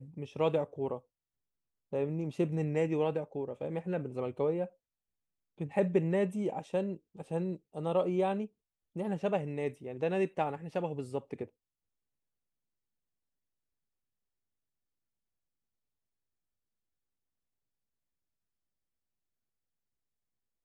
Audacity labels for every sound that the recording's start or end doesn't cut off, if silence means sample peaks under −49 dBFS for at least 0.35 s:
1.930000	4.690000	sound
5.590000	8.470000	sound
8.960000	11.460000	sound